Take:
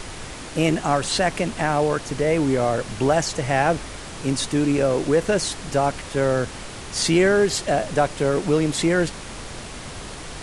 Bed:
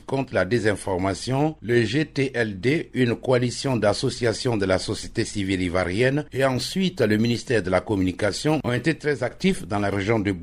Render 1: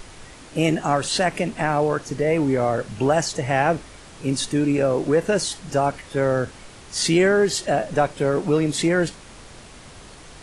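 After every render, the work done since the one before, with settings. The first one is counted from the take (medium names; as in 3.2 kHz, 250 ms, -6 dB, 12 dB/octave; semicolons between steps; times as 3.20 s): noise print and reduce 8 dB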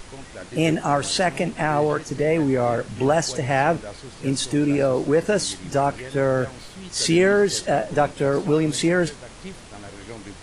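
add bed -17 dB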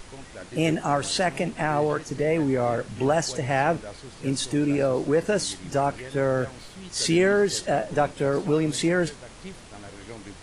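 trim -3 dB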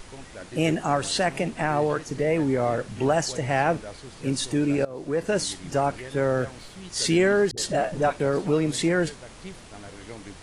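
4.85–5.37 s: fade in, from -20.5 dB; 7.51–8.20 s: phase dispersion highs, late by 65 ms, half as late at 370 Hz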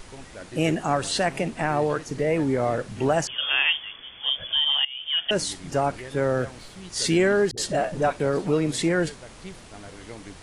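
3.27–5.31 s: frequency inversion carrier 3.4 kHz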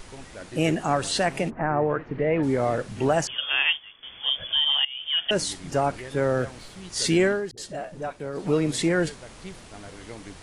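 1.49–2.42 s: low-pass 1.5 kHz -> 3.2 kHz 24 dB/octave; 3.40–4.03 s: upward expansion, over -41 dBFS; 7.24–8.51 s: dip -9.5 dB, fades 0.17 s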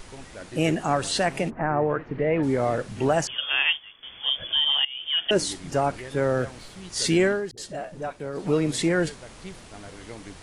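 4.42–5.58 s: peaking EQ 340 Hz +6.5 dB 0.8 oct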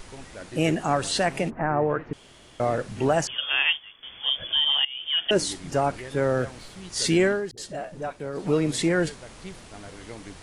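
2.13–2.60 s: room tone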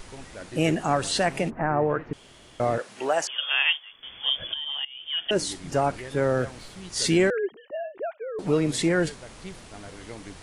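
2.78–3.93 s: high-pass 490 Hz; 4.54–5.75 s: fade in, from -12.5 dB; 7.30–8.39 s: formants replaced by sine waves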